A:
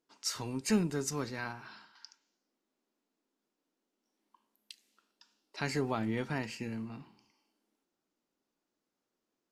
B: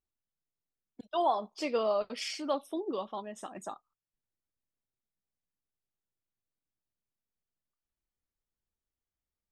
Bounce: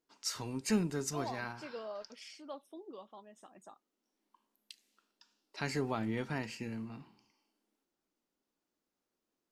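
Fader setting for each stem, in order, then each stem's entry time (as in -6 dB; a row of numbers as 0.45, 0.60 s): -2.0, -14.0 dB; 0.00, 0.00 s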